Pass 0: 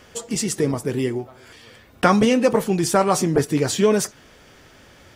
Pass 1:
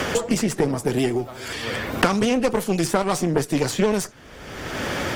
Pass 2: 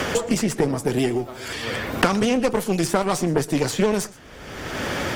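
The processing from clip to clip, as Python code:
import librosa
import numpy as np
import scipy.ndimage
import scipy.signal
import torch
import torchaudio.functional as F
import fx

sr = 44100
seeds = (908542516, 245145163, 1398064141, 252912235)

y1 = fx.vibrato(x, sr, rate_hz=12.0, depth_cents=52.0)
y1 = fx.cheby_harmonics(y1, sr, harmonics=(8,), levels_db=(-21,), full_scale_db=-1.0)
y1 = fx.band_squash(y1, sr, depth_pct=100)
y1 = y1 * librosa.db_to_amplitude(-3.0)
y2 = y1 + 10.0 ** (-20.5 / 20.0) * np.pad(y1, (int(120 * sr / 1000.0), 0))[:len(y1)]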